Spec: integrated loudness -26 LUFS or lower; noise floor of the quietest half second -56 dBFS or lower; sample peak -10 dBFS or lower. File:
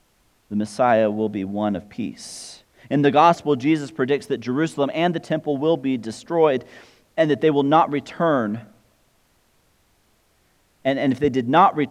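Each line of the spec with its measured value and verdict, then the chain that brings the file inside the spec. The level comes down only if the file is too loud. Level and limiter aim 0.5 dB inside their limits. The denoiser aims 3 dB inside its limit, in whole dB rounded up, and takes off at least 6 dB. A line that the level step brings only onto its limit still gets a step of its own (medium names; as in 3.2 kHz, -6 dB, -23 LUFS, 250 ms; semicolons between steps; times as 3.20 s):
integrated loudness -21.0 LUFS: fail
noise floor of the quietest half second -62 dBFS: pass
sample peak -2.5 dBFS: fail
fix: trim -5.5 dB; peak limiter -10.5 dBFS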